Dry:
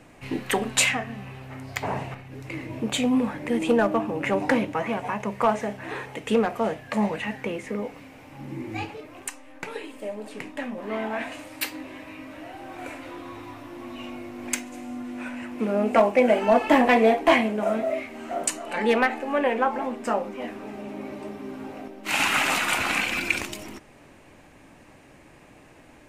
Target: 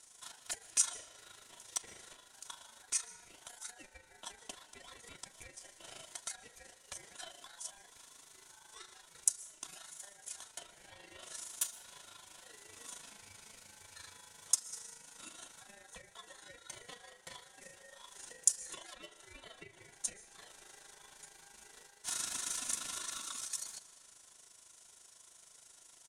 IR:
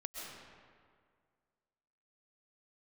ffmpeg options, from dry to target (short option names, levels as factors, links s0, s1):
-filter_complex "[0:a]aecho=1:1:2.7:0.96,acompressor=threshold=0.0282:ratio=6,tremolo=f=26:d=0.621,bandpass=f=7800:t=q:w=4:csg=0,aeval=exprs='val(0)*sin(2*PI*1200*n/s)':c=same,asplit=2[s0][s1];[1:a]atrim=start_sample=2205[s2];[s1][s2]afir=irnorm=-1:irlink=0,volume=0.282[s3];[s0][s3]amix=inputs=2:normalize=0,volume=5.01"